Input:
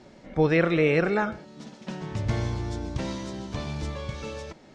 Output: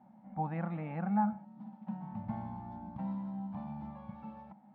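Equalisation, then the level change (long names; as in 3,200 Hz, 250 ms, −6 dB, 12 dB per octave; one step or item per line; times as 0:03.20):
pair of resonant band-passes 410 Hz, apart 2 octaves
high-frequency loss of the air 270 metres
+1.5 dB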